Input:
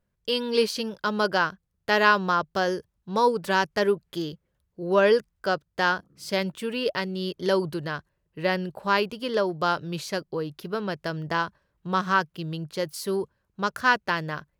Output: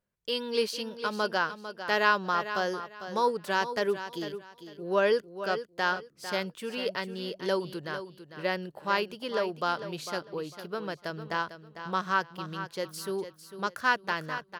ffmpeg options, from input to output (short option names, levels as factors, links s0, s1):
-filter_complex "[0:a]lowshelf=f=140:g=-11,asplit=2[s0][s1];[s1]aecho=0:1:450|900|1350:0.282|0.0676|0.0162[s2];[s0][s2]amix=inputs=2:normalize=0,volume=0.596"